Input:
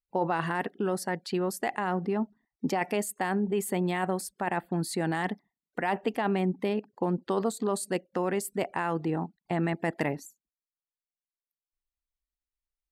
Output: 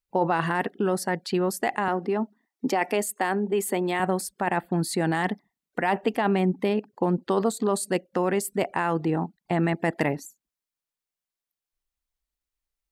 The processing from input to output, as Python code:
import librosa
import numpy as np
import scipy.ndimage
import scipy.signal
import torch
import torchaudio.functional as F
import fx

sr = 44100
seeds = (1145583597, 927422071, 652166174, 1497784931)

y = fx.highpass(x, sr, hz=220.0, slope=24, at=(1.88, 4.0))
y = y * 10.0 ** (4.5 / 20.0)